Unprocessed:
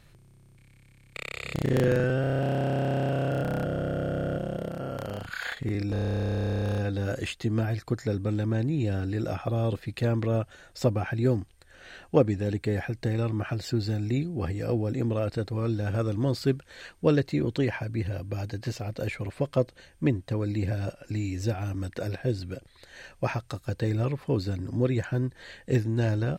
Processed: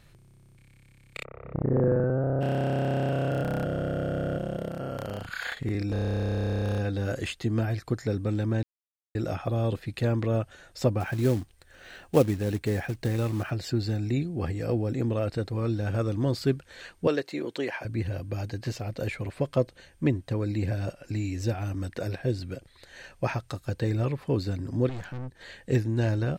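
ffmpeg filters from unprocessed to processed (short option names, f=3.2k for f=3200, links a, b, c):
-filter_complex "[0:a]asplit=3[a][b][c];[a]afade=t=out:st=1.23:d=0.02[d];[b]lowpass=f=1.2k:w=0.5412,lowpass=f=1.2k:w=1.3066,afade=t=in:st=1.23:d=0.02,afade=t=out:st=2.4:d=0.02[e];[c]afade=t=in:st=2.4:d=0.02[f];[d][e][f]amix=inputs=3:normalize=0,asettb=1/sr,asplit=3[g][h][i];[g]atrim=end=11.004[j];[h]atrim=start=11:end=13.51,asetpts=PTS-STARTPTS,afade=t=in:d=0.004:c=qsin,afade=t=out:st=2.506:d=0.004:c=qsin,acrusher=bits=5:mode=log:mix=0:aa=0.000001[k];[i]atrim=start=13.506[l];[j][k]acrossfade=d=0.004:c1=hsin:c2=qsin[m];[m][l]acrossfade=d=0.004:c1=qsin:c2=hsin,asettb=1/sr,asplit=3[n][o][p];[n]atrim=end=17.074[q];[o]atrim=start=17.07:end=17.85,asetpts=PTS-STARTPTS,afade=t=in:d=0.004:c=qsin,afade=t=out:st=0.776:d=0.004:c=qsin,highpass=370[r];[p]atrim=start=17.846[s];[q][r]acrossfade=d=0.004:c1=hsin:c2=qsin[t];[t][s]acrossfade=d=0.004:c1=qsin:c2=hsin,asettb=1/sr,asplit=3[u][v][w];[u]atrim=end=24.894[x];[v]atrim=start=24.89:end=25.41,asetpts=PTS-STARTPTS,afade=t=in:d=0.004:c=qsin,afade=t=out:st=0.516:d=0.004:c=qsin,aeval=exprs='(tanh(50.1*val(0)+0.75)-tanh(0.75))/50.1':c=same[y];[w]atrim=start=25.406[z];[x][y]acrossfade=d=0.004:c1=hsin:c2=qsin[aa];[aa][z]acrossfade=d=0.004:c1=qsin:c2=hsin,asplit=3[ab][ac][ad];[ab]atrim=end=8.63,asetpts=PTS-STARTPTS,afade=t=out:st=8.626:d=0.004:c=hsin[ae];[ac]atrim=start=8.63:end=9.15,asetpts=PTS-STARTPTS,volume=0[af];[ad]atrim=start=9.15,asetpts=PTS-STARTPTS,afade=t=in:d=0.004:c=hsin[ag];[ae][af][ag]concat=n=3:v=0:a=1"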